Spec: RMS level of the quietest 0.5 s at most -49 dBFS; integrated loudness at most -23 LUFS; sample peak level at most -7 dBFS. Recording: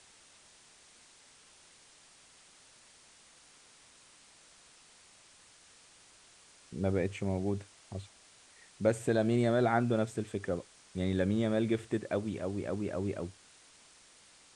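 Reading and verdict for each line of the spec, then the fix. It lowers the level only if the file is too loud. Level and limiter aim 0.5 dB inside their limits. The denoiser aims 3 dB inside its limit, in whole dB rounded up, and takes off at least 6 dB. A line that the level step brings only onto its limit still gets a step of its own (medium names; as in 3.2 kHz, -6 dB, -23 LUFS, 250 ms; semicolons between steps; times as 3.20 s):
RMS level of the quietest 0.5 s -60 dBFS: pass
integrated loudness -33.0 LUFS: pass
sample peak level -15.5 dBFS: pass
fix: none needed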